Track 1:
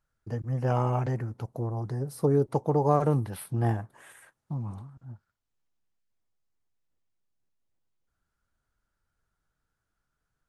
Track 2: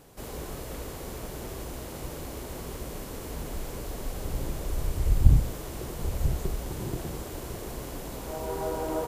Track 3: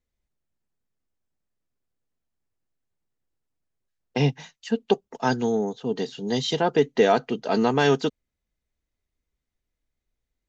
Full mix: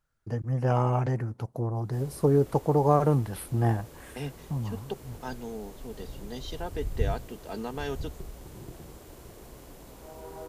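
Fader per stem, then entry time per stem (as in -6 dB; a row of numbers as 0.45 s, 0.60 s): +1.5 dB, -10.5 dB, -14.5 dB; 0.00 s, 1.75 s, 0.00 s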